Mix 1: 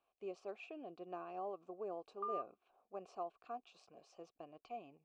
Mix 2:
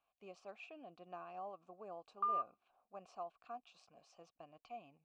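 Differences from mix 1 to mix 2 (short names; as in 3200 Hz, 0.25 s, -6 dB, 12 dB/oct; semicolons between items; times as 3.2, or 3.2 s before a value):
background +7.0 dB; master: add bell 390 Hz -12 dB 0.79 oct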